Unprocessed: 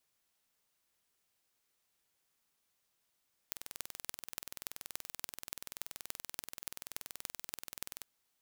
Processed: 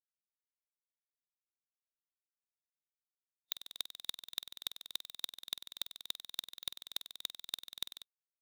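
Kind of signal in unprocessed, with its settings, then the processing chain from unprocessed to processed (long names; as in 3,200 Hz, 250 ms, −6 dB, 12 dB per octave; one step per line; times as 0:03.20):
impulse train 20.9 per second, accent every 6, −10 dBFS 4.53 s
parametric band 3,700 Hz +10 dB 0.26 octaves
every bin expanded away from the loudest bin 2.5 to 1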